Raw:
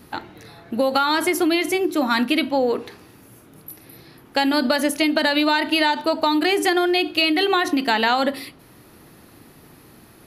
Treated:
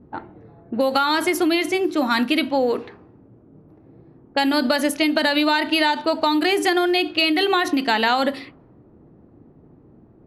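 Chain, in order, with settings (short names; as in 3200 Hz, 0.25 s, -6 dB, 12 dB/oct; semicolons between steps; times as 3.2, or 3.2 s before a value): low-pass opened by the level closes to 470 Hz, open at -16 dBFS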